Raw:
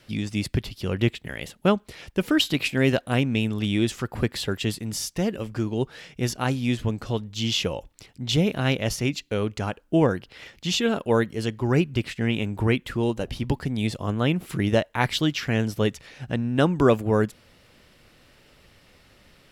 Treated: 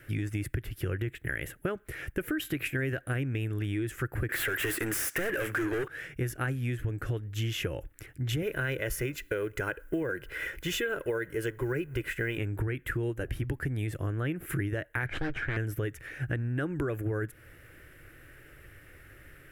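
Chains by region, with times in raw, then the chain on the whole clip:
4.29–5.88 low shelf 180 Hz -12 dB + overdrive pedal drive 32 dB, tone 6500 Hz, clips at -15.5 dBFS
8.42–12.38 G.711 law mismatch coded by mu + bell 100 Hz -14.5 dB 0.63 oct + comb 2 ms, depth 44%
15.06–15.57 minimum comb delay 1.3 ms + LPF 3100 Hz + Doppler distortion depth 0.5 ms
whole clip: EQ curve 130 Hz 0 dB, 220 Hz -16 dB, 310 Hz 0 dB, 980 Hz -14 dB, 1600 Hz +5 dB, 4400 Hz -21 dB, 12000 Hz +2 dB; limiter -19 dBFS; compressor, threshold -34 dBFS; gain +5.5 dB

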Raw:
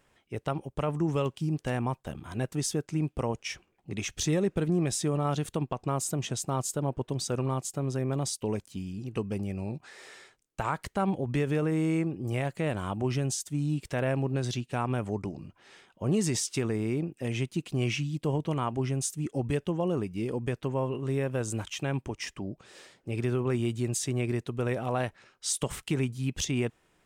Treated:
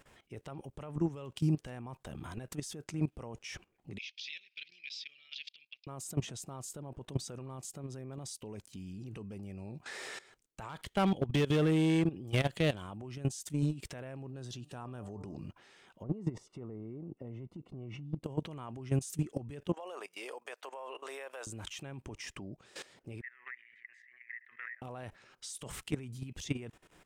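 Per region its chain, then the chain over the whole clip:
3.98–5.87 elliptic band-pass 2300–5000 Hz, stop band 50 dB + de-esser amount 80%
10.69–12.82 bell 3300 Hz +13 dB 0.42 oct + overloaded stage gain 24 dB
14.3–15.36 bell 2200 Hz -13.5 dB 0.25 oct + de-hum 148.1 Hz, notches 8
16.03–18.24 polynomial smoothing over 65 samples + compressor 16:1, threshold -31 dBFS
19.73–21.47 HPF 590 Hz 24 dB/oct + compressor 2:1, threshold -45 dBFS
23.21–24.82 Butterworth band-pass 1900 Hz, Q 6.6 + backwards sustainer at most 81 dB/s
whole clip: limiter -28.5 dBFS; level quantiser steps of 17 dB; gain +7 dB

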